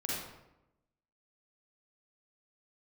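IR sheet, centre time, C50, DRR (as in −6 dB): 77 ms, −2.5 dB, −6.0 dB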